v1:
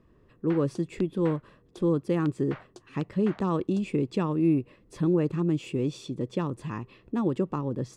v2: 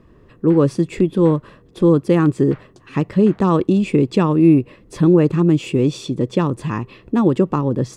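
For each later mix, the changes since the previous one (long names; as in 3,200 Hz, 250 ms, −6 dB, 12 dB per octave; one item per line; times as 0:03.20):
speech +11.5 dB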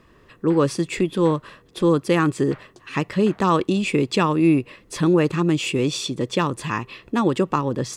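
speech: add tilt shelving filter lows −7 dB, about 800 Hz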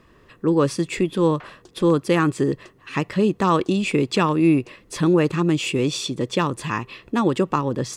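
background: entry +0.90 s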